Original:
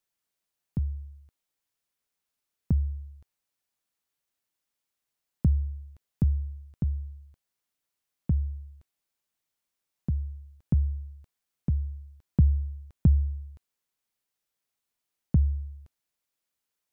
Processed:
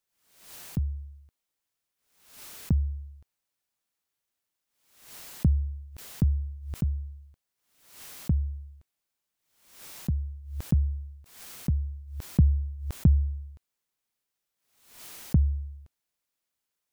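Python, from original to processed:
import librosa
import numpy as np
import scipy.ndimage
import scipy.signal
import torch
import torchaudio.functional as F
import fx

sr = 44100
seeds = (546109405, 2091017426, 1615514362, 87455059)

y = fx.pre_swell(x, sr, db_per_s=85.0)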